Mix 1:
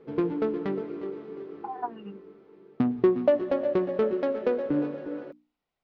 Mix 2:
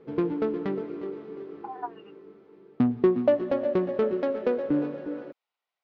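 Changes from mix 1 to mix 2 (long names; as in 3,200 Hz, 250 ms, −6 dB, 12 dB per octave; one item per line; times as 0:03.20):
speech: add high-pass filter 730 Hz 12 dB per octave
master: remove mains-hum notches 60/120/180/240/300 Hz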